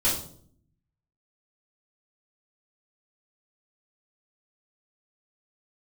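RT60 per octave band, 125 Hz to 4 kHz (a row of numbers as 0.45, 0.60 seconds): 1.1, 0.95, 0.65, 0.50, 0.40, 0.40 seconds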